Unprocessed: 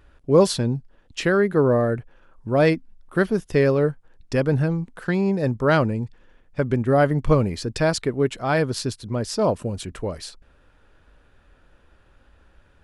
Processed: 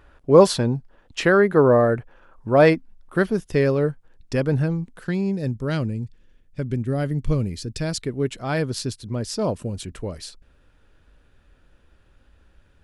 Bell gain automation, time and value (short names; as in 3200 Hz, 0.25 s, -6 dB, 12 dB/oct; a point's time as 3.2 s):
bell 940 Hz 2.4 oct
2.66 s +5.5 dB
3.43 s -2.5 dB
4.63 s -2.5 dB
5.65 s -14.5 dB
7.78 s -14.5 dB
8.33 s -5.5 dB